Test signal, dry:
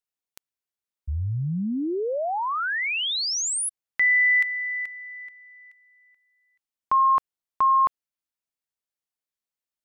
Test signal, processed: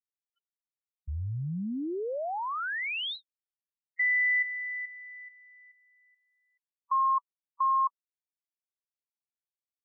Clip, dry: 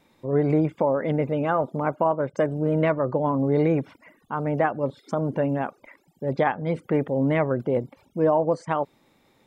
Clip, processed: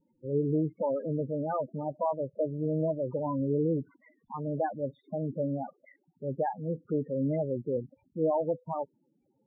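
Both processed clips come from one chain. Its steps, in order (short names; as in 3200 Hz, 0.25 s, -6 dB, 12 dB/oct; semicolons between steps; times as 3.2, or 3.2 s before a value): loudest bins only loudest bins 8; downsampling 8000 Hz; gain -6.5 dB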